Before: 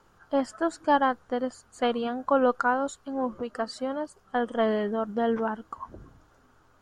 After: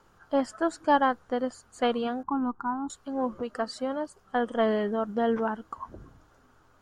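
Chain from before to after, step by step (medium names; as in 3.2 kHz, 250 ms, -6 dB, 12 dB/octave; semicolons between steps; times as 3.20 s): 2.23–2.90 s: FFT filter 360 Hz 0 dB, 560 Hz -30 dB, 870 Hz 0 dB, 2.2 kHz -24 dB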